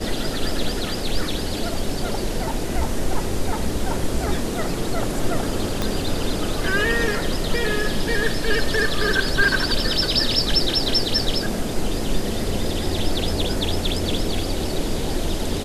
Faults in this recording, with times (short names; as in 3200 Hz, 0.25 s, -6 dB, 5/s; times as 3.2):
5.82 pop -8 dBFS